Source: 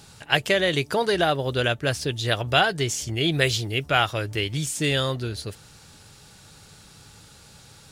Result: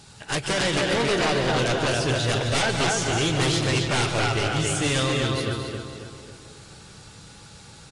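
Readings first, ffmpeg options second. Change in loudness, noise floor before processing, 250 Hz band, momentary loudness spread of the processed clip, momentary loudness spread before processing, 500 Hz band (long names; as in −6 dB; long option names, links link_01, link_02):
+0.5 dB, −50 dBFS, +3.0 dB, 9 LU, 6 LU, 0.0 dB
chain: -filter_complex "[0:a]asplit=2[link_01][link_02];[link_02]adelay=272,lowpass=frequency=4000:poles=1,volume=-4dB,asplit=2[link_03][link_04];[link_04]adelay=272,lowpass=frequency=4000:poles=1,volume=0.48,asplit=2[link_05][link_06];[link_06]adelay=272,lowpass=frequency=4000:poles=1,volume=0.48,asplit=2[link_07][link_08];[link_08]adelay=272,lowpass=frequency=4000:poles=1,volume=0.48,asplit=2[link_09][link_10];[link_10]adelay=272,lowpass=frequency=4000:poles=1,volume=0.48,asplit=2[link_11][link_12];[link_12]adelay=272,lowpass=frequency=4000:poles=1,volume=0.48[link_13];[link_03][link_05][link_07][link_09][link_11][link_13]amix=inputs=6:normalize=0[link_14];[link_01][link_14]amix=inputs=2:normalize=0,aeval=exprs='0.112*(abs(mod(val(0)/0.112+3,4)-2)-1)':channel_layout=same,asplit=2[link_15][link_16];[link_16]aecho=0:1:142|148|220:0.224|0.282|0.335[link_17];[link_15][link_17]amix=inputs=2:normalize=0" -ar 22050 -c:a aac -b:a 32k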